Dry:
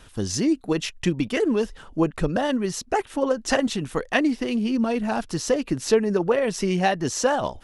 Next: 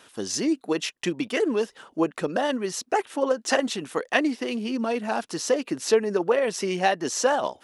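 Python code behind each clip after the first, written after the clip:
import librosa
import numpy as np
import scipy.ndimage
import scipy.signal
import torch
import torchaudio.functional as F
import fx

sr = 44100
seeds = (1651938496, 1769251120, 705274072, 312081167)

y = scipy.signal.sosfilt(scipy.signal.butter(2, 300.0, 'highpass', fs=sr, output='sos'), x)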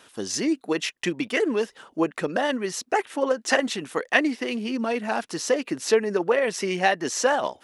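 y = fx.dynamic_eq(x, sr, hz=2000.0, q=1.9, threshold_db=-44.0, ratio=4.0, max_db=5)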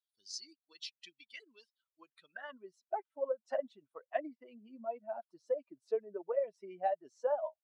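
y = fx.bin_expand(x, sr, power=2.0)
y = fx.filter_sweep_bandpass(y, sr, from_hz=4400.0, to_hz=620.0, start_s=2.16, end_s=2.66, q=4.4)
y = F.gain(torch.from_numpy(y), -2.5).numpy()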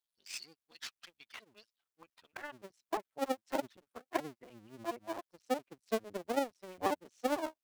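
y = fx.cycle_switch(x, sr, every=2, mode='muted')
y = F.gain(torch.from_numpy(y), 3.0).numpy()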